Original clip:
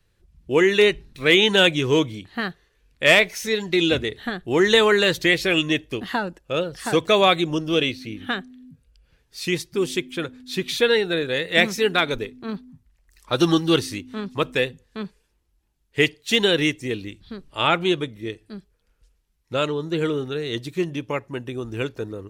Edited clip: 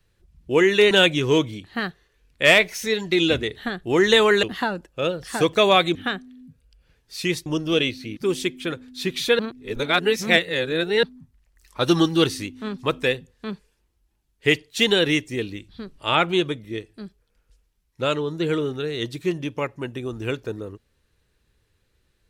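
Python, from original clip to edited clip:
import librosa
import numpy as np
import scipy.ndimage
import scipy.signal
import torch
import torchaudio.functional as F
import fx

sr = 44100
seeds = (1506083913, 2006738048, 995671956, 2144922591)

y = fx.edit(x, sr, fx.cut(start_s=0.91, length_s=0.61),
    fx.cut(start_s=5.04, length_s=0.91),
    fx.move(start_s=7.47, length_s=0.71, to_s=9.69),
    fx.reverse_span(start_s=10.91, length_s=1.64), tone=tone)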